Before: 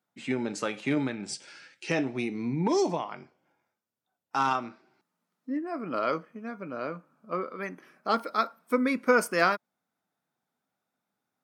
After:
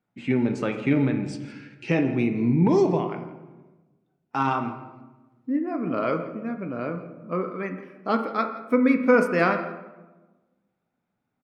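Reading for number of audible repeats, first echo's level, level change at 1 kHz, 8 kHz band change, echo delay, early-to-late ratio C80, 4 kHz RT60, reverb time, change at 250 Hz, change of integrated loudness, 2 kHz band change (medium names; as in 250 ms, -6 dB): 1, -18.5 dB, +1.5 dB, no reading, 167 ms, 10.5 dB, 0.65 s, 1.2 s, +8.0 dB, +5.0 dB, +1.5 dB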